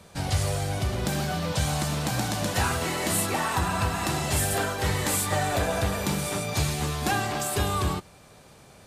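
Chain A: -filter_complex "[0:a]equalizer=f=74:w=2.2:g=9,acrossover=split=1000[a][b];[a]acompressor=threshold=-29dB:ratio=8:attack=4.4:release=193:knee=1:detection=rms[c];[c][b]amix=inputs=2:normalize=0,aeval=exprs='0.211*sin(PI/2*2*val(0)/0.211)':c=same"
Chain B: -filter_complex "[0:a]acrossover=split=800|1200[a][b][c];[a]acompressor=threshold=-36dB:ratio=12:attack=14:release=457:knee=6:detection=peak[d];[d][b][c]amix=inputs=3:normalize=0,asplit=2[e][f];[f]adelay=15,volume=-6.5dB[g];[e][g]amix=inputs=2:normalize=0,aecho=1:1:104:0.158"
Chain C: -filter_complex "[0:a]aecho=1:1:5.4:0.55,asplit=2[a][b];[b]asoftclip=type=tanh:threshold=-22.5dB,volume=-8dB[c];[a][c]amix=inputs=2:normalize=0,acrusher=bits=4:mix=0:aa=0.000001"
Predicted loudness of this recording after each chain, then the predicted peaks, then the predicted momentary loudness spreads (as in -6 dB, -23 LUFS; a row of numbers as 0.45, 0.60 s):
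-20.0, -28.5, -23.0 LUFS; -13.5, -12.0, -11.5 dBFS; 4, 6, 3 LU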